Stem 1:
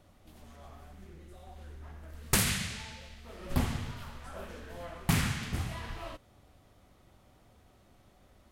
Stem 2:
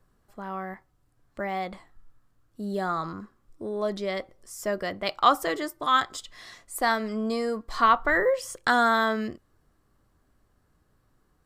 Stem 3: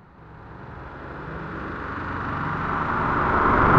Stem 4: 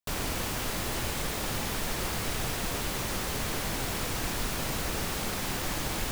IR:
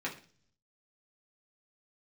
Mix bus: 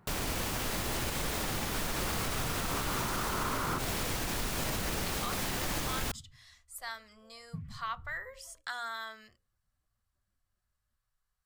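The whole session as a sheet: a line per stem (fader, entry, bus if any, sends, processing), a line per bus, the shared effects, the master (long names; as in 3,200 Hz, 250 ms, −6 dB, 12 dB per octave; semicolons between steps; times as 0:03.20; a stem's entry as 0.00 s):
−12.5 dB, 2.45 s, no send, expanding power law on the bin magnitudes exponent 2.6; expander for the loud parts 1.5 to 1, over −46 dBFS
−9.0 dB, 0.00 s, no send, guitar amp tone stack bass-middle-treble 10-0-10; mains-hum notches 60/120/180/240/300/360/420/480/540 Hz
−13.0 dB, 0.00 s, no send, no processing
−0.5 dB, 0.00 s, no send, no processing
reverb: not used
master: brickwall limiter −23.5 dBFS, peak gain reduction 8.5 dB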